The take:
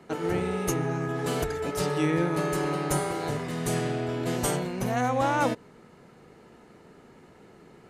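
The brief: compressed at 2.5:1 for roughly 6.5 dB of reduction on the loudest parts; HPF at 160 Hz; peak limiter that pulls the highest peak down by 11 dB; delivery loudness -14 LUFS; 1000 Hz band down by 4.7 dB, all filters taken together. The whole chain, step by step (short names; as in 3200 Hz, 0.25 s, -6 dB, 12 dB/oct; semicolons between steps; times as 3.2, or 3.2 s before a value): HPF 160 Hz; bell 1000 Hz -6.5 dB; compressor 2.5:1, threshold -32 dBFS; gain +24.5 dB; limiter -5.5 dBFS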